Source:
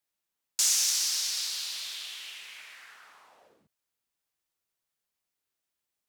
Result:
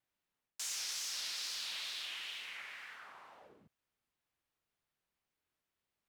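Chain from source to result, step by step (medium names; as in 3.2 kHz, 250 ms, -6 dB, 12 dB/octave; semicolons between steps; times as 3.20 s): tone controls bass +4 dB, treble -10 dB; reverse; compression 6:1, threshold -39 dBFS, peak gain reduction 10 dB; reverse; wow and flutter 140 cents; trim +1.5 dB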